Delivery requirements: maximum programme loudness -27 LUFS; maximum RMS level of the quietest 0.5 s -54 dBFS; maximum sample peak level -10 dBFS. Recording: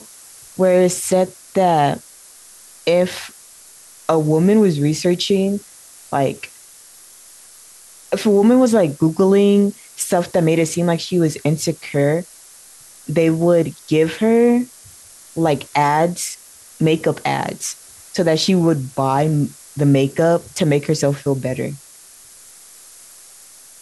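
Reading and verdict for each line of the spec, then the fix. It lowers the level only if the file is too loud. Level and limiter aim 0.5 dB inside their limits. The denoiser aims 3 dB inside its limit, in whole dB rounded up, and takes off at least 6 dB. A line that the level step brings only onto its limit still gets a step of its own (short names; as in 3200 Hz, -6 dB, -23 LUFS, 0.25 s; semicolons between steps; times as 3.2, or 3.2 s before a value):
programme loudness -17.5 LUFS: fail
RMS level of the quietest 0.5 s -44 dBFS: fail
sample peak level -5.0 dBFS: fail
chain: denoiser 6 dB, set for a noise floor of -44 dBFS; gain -10 dB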